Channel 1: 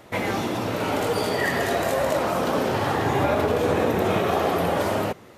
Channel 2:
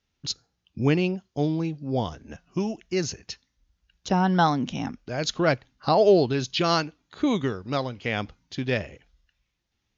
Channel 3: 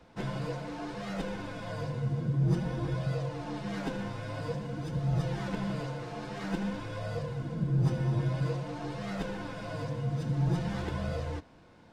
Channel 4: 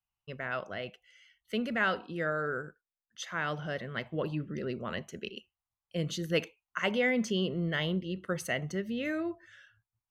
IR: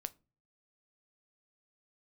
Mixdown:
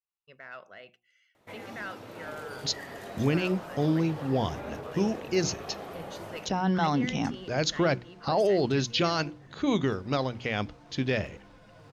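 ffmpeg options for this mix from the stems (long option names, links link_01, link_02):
-filter_complex "[0:a]adelay=1350,volume=-18.5dB[link_01];[1:a]alimiter=limit=-18dB:level=0:latency=1:release=12,adelay=2400,volume=1dB[link_02];[2:a]aeval=exprs='0.0237*(abs(mod(val(0)/0.0237+3,4)-2)-1)':channel_layout=same,adelay=2050,volume=-14.5dB[link_03];[3:a]bandreject=frequency=3100:width=12,asplit=2[link_04][link_05];[link_05]highpass=frequency=720:poles=1,volume=11dB,asoftclip=type=tanh:threshold=-15.5dB[link_06];[link_04][link_06]amix=inputs=2:normalize=0,lowpass=frequency=6300:poles=1,volume=-6dB,volume=-13.5dB[link_07];[link_01][link_02][link_03][link_07]amix=inputs=4:normalize=0,bandreject=frequency=60:width_type=h:width=6,bandreject=frequency=120:width_type=h:width=6,bandreject=frequency=180:width_type=h:width=6,bandreject=frequency=240:width_type=h:width=6,bandreject=frequency=300:width_type=h:width=6,bandreject=frequency=360:width_type=h:width=6"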